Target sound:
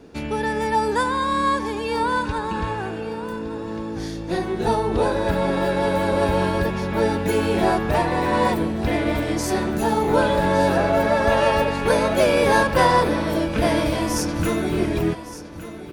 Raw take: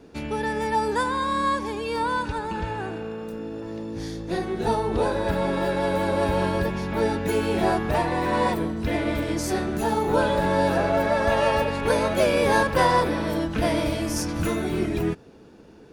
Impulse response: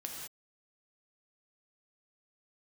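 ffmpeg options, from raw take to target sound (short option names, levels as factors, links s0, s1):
-af "aecho=1:1:1164|2328|3492:0.2|0.0619|0.0192,volume=1.41"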